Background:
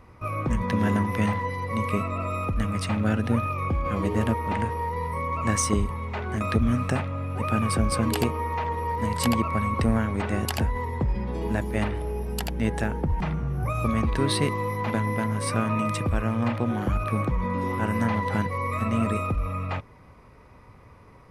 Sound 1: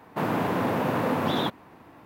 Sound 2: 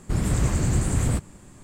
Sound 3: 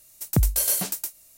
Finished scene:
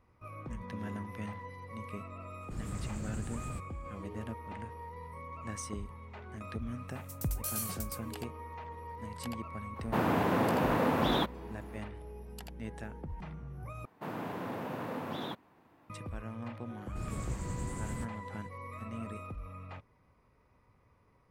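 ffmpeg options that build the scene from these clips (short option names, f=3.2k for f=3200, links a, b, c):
-filter_complex "[2:a]asplit=2[a][b];[1:a]asplit=2[c][d];[0:a]volume=-16.5dB,asplit=2[e][f];[e]atrim=end=13.854[g];[d]atrim=end=2.05,asetpts=PTS-STARTPTS,volume=-13dB[h];[f]atrim=start=15.896[i];[a]atrim=end=1.63,asetpts=PTS-STARTPTS,volume=-17.5dB,afade=t=in:d=0.004:c=hsin,afade=t=out:st=1.626:d=0.004:c=hsin,adelay=2410[j];[3:a]atrim=end=1.37,asetpts=PTS-STARTPTS,volume=-14dB,afade=t=in:d=0.004:c=hsin,afade=t=out:st=1.366:d=0.004:c=hsin,adelay=6880[k];[c]atrim=end=2.05,asetpts=PTS-STARTPTS,volume=-3dB,afade=t=in:d=0.004:c=hsin,afade=t=out:st=2.046:d=0.004:c=hsin,adelay=9760[l];[b]atrim=end=1.63,asetpts=PTS-STARTPTS,volume=-16dB,afade=t=in:d=0.004:c=hsin,afade=t=out:st=1.626:d=0.004:c=hsin,adelay=16860[m];[g][h]acrossfade=d=0.004:c1=hsin:c2=hsin[n];[n][i]acrossfade=d=0.004:c1=hsin:c2=hsin[o];[o][j][k][l][m]amix=inputs=5:normalize=0"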